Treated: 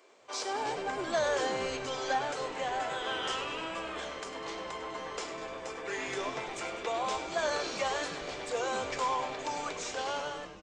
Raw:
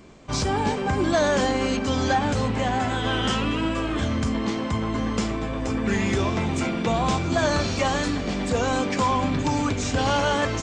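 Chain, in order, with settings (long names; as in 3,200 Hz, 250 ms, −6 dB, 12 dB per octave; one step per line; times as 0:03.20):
fade-out on the ending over 0.78 s
Butterworth high-pass 390 Hz 36 dB per octave
echo with shifted repeats 100 ms, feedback 62%, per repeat −130 Hz, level −11 dB
level −8 dB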